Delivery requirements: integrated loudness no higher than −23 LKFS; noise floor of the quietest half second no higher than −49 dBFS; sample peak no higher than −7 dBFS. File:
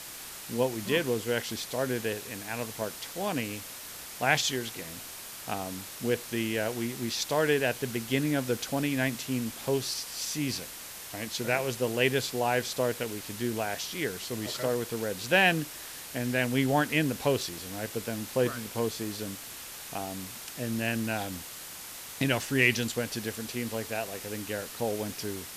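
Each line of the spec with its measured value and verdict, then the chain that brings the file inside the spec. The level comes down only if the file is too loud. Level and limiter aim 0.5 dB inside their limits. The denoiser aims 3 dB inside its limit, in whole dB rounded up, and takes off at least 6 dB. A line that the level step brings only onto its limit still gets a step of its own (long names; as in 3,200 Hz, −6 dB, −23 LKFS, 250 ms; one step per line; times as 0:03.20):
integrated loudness −30.5 LKFS: in spec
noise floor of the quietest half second −43 dBFS: out of spec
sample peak −9.0 dBFS: in spec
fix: broadband denoise 9 dB, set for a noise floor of −43 dBFS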